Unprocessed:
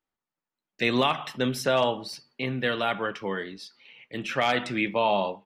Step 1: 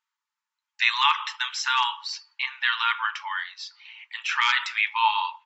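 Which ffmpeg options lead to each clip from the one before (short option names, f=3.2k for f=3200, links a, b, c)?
-af "afftfilt=real='re*between(b*sr/4096,850,7700)':imag='im*between(b*sr/4096,850,7700)':win_size=4096:overlap=0.75,volume=6dB"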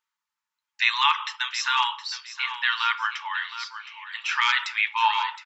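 -af "aecho=1:1:716|1432|2148:0.251|0.0628|0.0157"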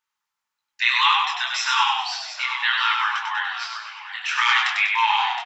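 -filter_complex "[0:a]flanger=delay=17.5:depth=7.4:speed=1.8,asplit=7[a][b][c][d][e][f][g];[b]adelay=97,afreqshift=-44,volume=-3.5dB[h];[c]adelay=194,afreqshift=-88,volume=-10.2dB[i];[d]adelay=291,afreqshift=-132,volume=-17dB[j];[e]adelay=388,afreqshift=-176,volume=-23.7dB[k];[f]adelay=485,afreqshift=-220,volume=-30.5dB[l];[g]adelay=582,afreqshift=-264,volume=-37.2dB[m];[a][h][i][j][k][l][m]amix=inputs=7:normalize=0,volume=5dB"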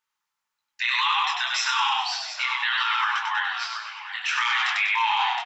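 -af "alimiter=limit=-14dB:level=0:latency=1:release=17"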